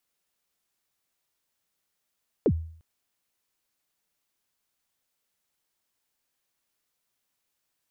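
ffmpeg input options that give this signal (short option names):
-f lavfi -i "aevalsrc='0.168*pow(10,-3*t/0.55)*sin(2*PI*(530*0.062/log(81/530)*(exp(log(81/530)*min(t,0.062)/0.062)-1)+81*max(t-0.062,0)))':d=0.35:s=44100"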